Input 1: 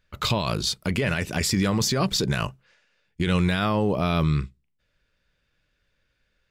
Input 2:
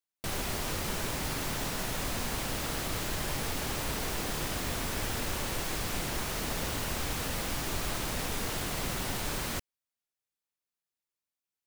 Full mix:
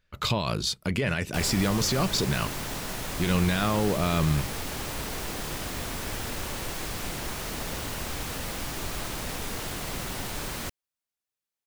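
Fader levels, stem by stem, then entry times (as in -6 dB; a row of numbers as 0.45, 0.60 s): -2.5, 0.0 dB; 0.00, 1.10 s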